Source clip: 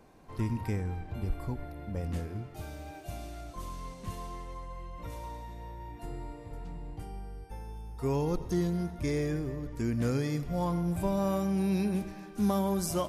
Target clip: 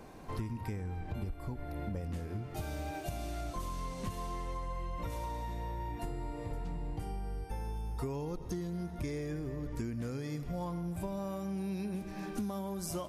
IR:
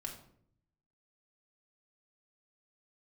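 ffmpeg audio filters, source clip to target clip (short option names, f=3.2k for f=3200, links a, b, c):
-af "acompressor=threshold=-41dB:ratio=16,volume=7dB"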